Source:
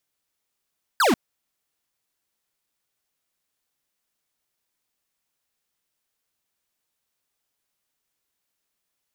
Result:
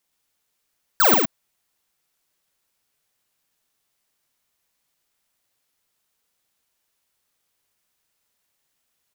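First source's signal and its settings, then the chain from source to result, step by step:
laser zap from 1.7 kHz, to 200 Hz, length 0.14 s square, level -18 dB
peaking EQ 300 Hz -4 dB; on a send: loudspeakers at several distances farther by 16 m -6 dB, 39 m -3 dB; on the sum: careless resampling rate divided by 2×, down none, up zero stuff

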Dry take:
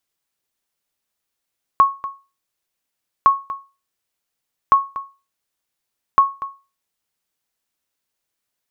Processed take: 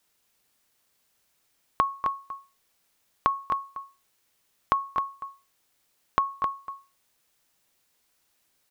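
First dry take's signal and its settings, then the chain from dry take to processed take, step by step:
sonar ping 1.1 kHz, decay 0.30 s, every 1.46 s, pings 4, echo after 0.24 s, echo -15.5 dB -4 dBFS
compression, threshold -22 dBFS; word length cut 12-bit, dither triangular; on a send: delay 262 ms -8 dB

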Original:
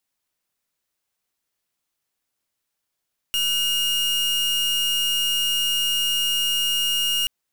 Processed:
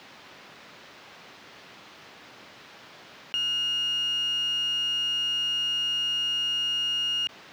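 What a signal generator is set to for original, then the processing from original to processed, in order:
pulse 2.85 kHz, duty 41% -22 dBFS 3.93 s
high-pass 130 Hz 12 dB/octave; distance through air 240 m; level flattener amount 70%

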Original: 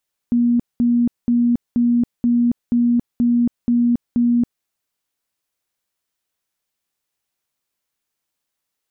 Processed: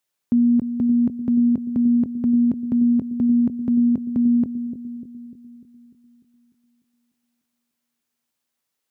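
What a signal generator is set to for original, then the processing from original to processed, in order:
tone bursts 239 Hz, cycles 66, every 0.48 s, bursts 9, -12.5 dBFS
high-pass 87 Hz; bucket-brigade echo 297 ms, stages 1024, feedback 54%, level -10 dB

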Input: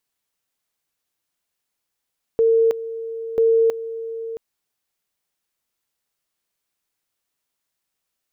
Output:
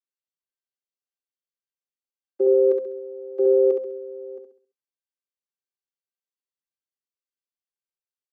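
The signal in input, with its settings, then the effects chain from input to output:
two-level tone 454 Hz -12.5 dBFS, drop 14 dB, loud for 0.32 s, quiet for 0.67 s, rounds 2
vocoder on a held chord bare fifth, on C4; feedback delay 67 ms, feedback 42%, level -5 dB; three bands expanded up and down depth 40%

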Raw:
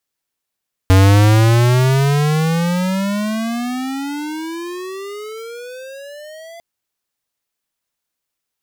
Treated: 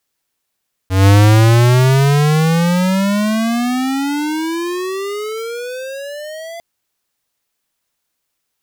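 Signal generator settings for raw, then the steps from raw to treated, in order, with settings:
gliding synth tone square, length 5.70 s, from 93.2 Hz, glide +34.5 st, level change -28 dB, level -8 dB
slow attack 172 ms; in parallel at +1 dB: compression, threshold -25 dBFS

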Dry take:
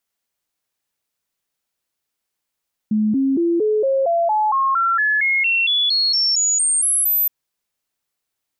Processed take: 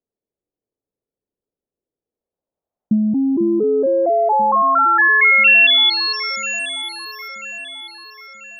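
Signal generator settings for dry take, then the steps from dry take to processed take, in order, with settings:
stepped sine 214 Hz up, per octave 3, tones 19, 0.23 s, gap 0.00 s -14.5 dBFS
transient shaper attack +5 dB, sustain -7 dB; low-pass sweep 430 Hz -> 3 kHz, 1.94–5.47 s; echo whose repeats swap between lows and highs 494 ms, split 1.9 kHz, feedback 66%, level -10 dB

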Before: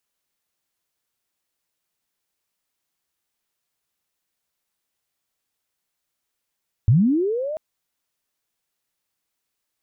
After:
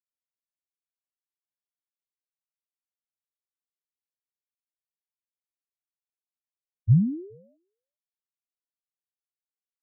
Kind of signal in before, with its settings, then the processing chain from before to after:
sweep linear 95 Hz -> 640 Hz -10.5 dBFS -> -25.5 dBFS 0.69 s
on a send: delay 421 ms -9.5 dB; on the sum: spectral contrast expander 4:1

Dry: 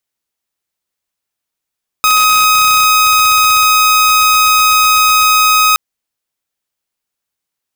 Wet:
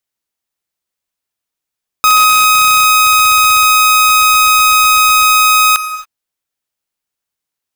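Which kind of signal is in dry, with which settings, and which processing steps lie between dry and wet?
tone saw 1.26 kHz -4.5 dBFS 3.72 s
waveshaping leveller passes 1; gated-style reverb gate 300 ms flat, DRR 12 dB

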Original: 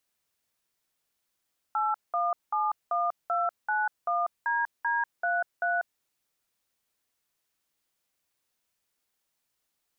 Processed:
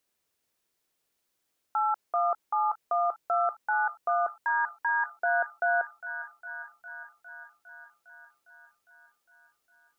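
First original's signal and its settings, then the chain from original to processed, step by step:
DTMF "8171291DD33", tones 193 ms, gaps 194 ms, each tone -27 dBFS
peaking EQ 390 Hz +5.5 dB 1.3 oct; on a send: feedback echo behind a high-pass 406 ms, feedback 70%, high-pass 1.5 kHz, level -8.5 dB

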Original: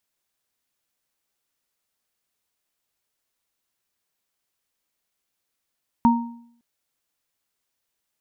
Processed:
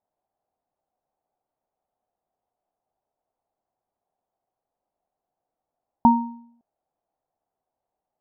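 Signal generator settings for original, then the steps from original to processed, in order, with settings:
sine partials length 0.56 s, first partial 236 Hz, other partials 930 Hz, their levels -2 dB, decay 0.65 s, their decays 0.48 s, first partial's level -12 dB
resonant low-pass 740 Hz, resonance Q 4.9

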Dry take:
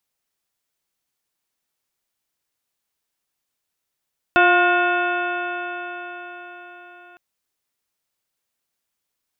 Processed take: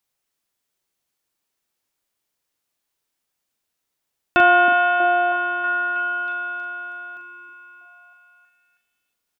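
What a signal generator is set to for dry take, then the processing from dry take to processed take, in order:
stretched partials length 2.81 s, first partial 351 Hz, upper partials 3/-4/4.5/-9/-14/-2/-18.5/-14.5 dB, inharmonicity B 0.0028, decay 4.96 s, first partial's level -18.5 dB
doubling 41 ms -6.5 dB; on a send: repeats whose band climbs or falls 320 ms, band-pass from 310 Hz, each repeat 0.7 oct, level -3 dB

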